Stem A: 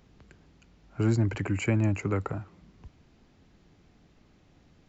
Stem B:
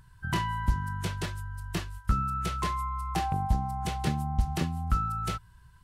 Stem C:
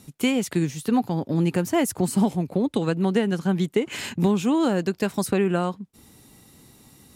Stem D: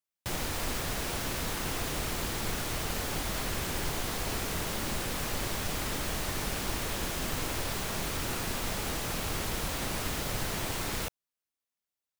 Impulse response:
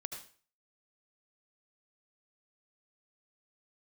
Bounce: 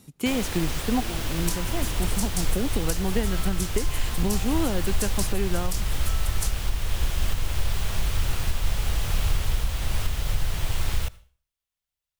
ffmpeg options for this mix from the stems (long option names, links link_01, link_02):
-filter_complex "[0:a]volume=-14dB,asplit=2[link_01][link_02];[1:a]aexciter=amount=10.3:drive=9.7:freq=4500,adelay=1150,volume=-12dB[link_03];[2:a]volume=-4dB,asplit=2[link_04][link_05];[link_05]volume=-19dB[link_06];[3:a]equalizer=frequency=3100:width=2.2:gain=4,asubboost=boost=9:cutoff=83,volume=-0.5dB,asplit=2[link_07][link_08];[link_08]volume=-14dB[link_09];[link_02]apad=whole_len=315588[link_10];[link_04][link_10]sidechaincompress=threshold=-43dB:ratio=8:attack=16:release=390[link_11];[4:a]atrim=start_sample=2205[link_12];[link_06][link_09]amix=inputs=2:normalize=0[link_13];[link_13][link_12]afir=irnorm=-1:irlink=0[link_14];[link_01][link_03][link_11][link_07][link_14]amix=inputs=5:normalize=0,alimiter=limit=-12.5dB:level=0:latency=1:release=452"